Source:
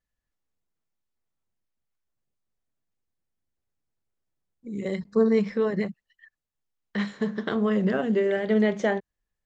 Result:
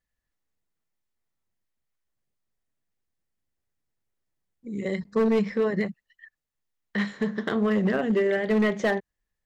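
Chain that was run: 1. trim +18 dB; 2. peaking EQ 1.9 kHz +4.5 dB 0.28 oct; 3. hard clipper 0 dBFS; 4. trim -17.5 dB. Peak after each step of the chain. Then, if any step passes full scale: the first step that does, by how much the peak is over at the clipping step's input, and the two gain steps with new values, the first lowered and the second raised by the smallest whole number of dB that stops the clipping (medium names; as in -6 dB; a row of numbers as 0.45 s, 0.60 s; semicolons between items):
+7.0 dBFS, +7.5 dBFS, 0.0 dBFS, -17.5 dBFS; step 1, 7.5 dB; step 1 +10 dB, step 4 -9.5 dB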